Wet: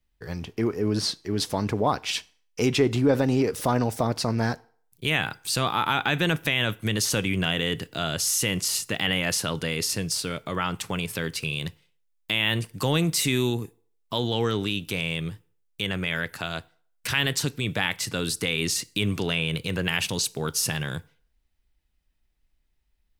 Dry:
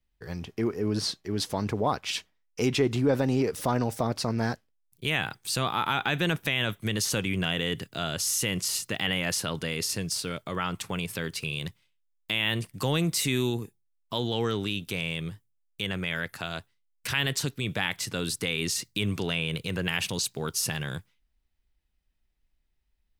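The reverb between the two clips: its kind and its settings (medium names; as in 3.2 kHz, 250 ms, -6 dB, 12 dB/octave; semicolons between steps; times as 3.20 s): FDN reverb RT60 0.52 s, low-frequency decay 0.75×, high-frequency decay 0.8×, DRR 18.5 dB; trim +3 dB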